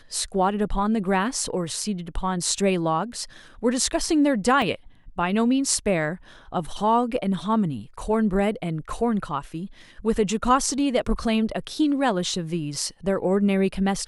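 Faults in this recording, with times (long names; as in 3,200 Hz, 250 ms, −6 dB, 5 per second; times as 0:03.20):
0:04.62: drop-out 2.3 ms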